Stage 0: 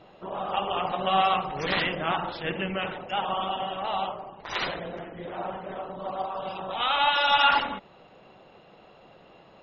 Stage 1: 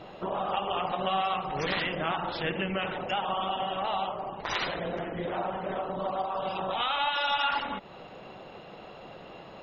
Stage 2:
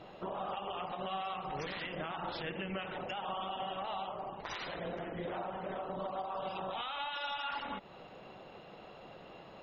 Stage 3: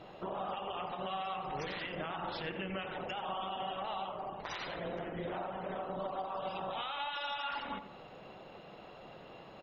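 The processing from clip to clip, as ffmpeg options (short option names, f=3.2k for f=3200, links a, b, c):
-af "acompressor=threshold=-37dB:ratio=3,volume=7dB"
-af "alimiter=limit=-23.5dB:level=0:latency=1:release=133,volume=-6dB"
-filter_complex "[0:a]asplit=2[a][b];[b]adelay=89,lowpass=f=2.2k:p=1,volume=-11dB,asplit=2[c][d];[d]adelay=89,lowpass=f=2.2k:p=1,volume=0.47,asplit=2[e][f];[f]adelay=89,lowpass=f=2.2k:p=1,volume=0.47,asplit=2[g][h];[h]adelay=89,lowpass=f=2.2k:p=1,volume=0.47,asplit=2[i][j];[j]adelay=89,lowpass=f=2.2k:p=1,volume=0.47[k];[a][c][e][g][i][k]amix=inputs=6:normalize=0"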